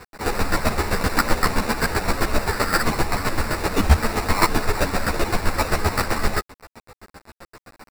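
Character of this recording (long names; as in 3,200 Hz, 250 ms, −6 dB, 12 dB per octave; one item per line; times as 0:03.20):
aliases and images of a low sample rate 3,200 Hz, jitter 0%
chopped level 7.7 Hz, depth 65%, duty 25%
a quantiser's noise floor 8 bits, dither none
a shimmering, thickened sound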